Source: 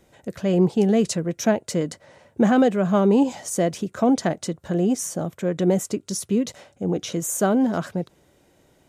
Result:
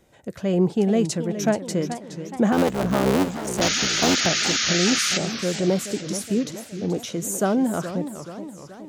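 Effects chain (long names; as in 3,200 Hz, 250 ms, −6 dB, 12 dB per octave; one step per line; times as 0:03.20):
0:02.52–0:04.27: sub-harmonics by changed cycles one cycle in 3, muted
0:03.61–0:05.18: sound drawn into the spectrogram noise 1,200–7,000 Hz −22 dBFS
feedback echo with a swinging delay time 423 ms, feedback 55%, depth 211 cents, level −11 dB
level −1.5 dB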